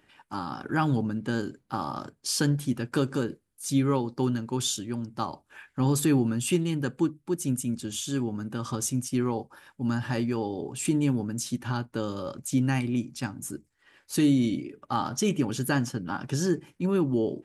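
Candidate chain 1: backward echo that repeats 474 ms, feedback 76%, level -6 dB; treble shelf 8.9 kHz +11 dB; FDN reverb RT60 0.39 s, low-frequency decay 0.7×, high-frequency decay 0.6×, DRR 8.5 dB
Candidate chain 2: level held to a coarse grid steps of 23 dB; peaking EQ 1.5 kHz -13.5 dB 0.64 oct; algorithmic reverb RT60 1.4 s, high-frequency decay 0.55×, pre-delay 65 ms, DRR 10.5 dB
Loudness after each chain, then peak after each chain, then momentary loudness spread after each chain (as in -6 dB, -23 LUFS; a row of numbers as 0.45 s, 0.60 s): -25.0 LUFS, -32.5 LUFS; -7.5 dBFS, -14.5 dBFS; 8 LU, 19 LU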